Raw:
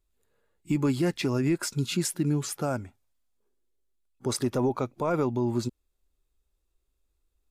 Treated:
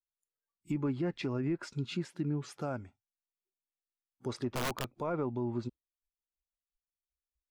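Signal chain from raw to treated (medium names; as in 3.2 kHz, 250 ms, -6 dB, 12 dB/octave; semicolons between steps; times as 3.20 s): low-pass that closes with the level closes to 1.8 kHz, closed at -21.5 dBFS; 4.48–4.94 s: integer overflow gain 21 dB; spectral noise reduction 26 dB; trim -7.5 dB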